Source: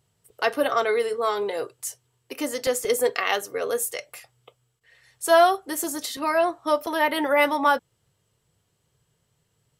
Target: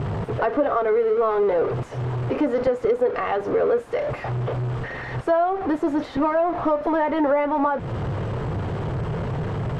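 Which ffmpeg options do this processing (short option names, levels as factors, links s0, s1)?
-af "aeval=exprs='val(0)+0.5*0.0631*sgn(val(0))':c=same,acompressor=threshold=0.0708:ratio=6,lowpass=1100,volume=2.11"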